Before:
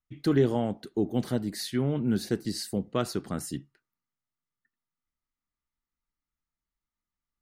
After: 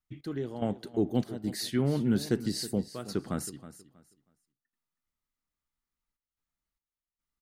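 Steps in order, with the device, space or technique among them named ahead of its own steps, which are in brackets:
0:02.87–0:03.31: high-shelf EQ 4,100 Hz −6.5 dB
trance gate with a delay (gate pattern "x..xxx.xxxxxxx.x" 73 BPM −12 dB; repeating echo 320 ms, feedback 24%, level −15 dB)

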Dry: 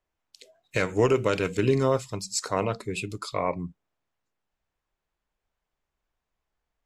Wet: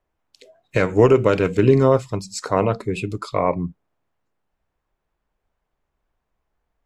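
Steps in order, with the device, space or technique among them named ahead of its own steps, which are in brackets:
through cloth (high-shelf EQ 2,400 Hz −12 dB)
level +8.5 dB

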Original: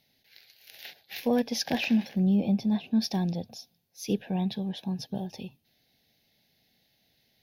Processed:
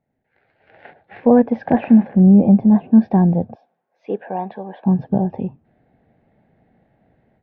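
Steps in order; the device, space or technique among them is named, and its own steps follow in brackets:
0:03.55–0:04.86: high-pass filter 610 Hz 12 dB per octave
action camera in a waterproof case (low-pass filter 1,400 Hz 24 dB per octave; automatic gain control gain up to 16.5 dB; AAC 96 kbit/s 22,050 Hz)

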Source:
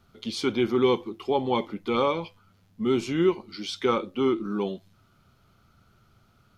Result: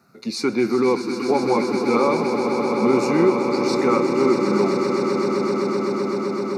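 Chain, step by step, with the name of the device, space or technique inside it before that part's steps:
PA system with an anti-feedback notch (high-pass filter 140 Hz 24 dB per octave; Butterworth band-reject 3,200 Hz, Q 2.3; brickwall limiter −16.5 dBFS, peak gain reduction 5.5 dB)
echo that builds up and dies away 128 ms, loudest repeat 8, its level −10 dB
level +6 dB

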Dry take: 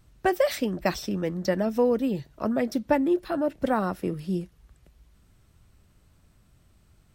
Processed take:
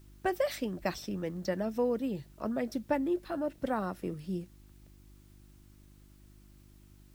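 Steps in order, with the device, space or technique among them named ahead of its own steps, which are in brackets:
video cassette with head-switching buzz (hum with harmonics 50 Hz, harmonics 7, −50 dBFS −5 dB per octave; white noise bed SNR 34 dB)
level −7.5 dB

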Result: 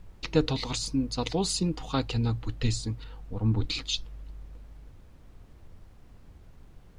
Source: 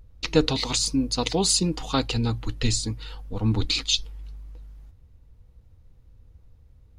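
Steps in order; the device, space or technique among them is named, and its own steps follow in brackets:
0:03.04–0:03.64: low-pass filter 1,600 Hz 6 dB per octave
car interior (parametric band 130 Hz +4 dB; high-shelf EQ 4,300 Hz −7 dB; brown noise bed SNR 19 dB)
level −4.5 dB

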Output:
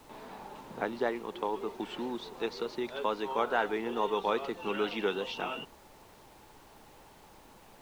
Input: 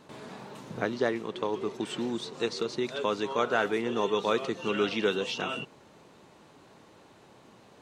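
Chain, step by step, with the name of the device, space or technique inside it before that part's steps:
horn gramophone (band-pass filter 190–4,100 Hz; parametric band 860 Hz +8 dB 0.42 octaves; tape wow and flutter; pink noise bed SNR 24 dB)
level −4 dB

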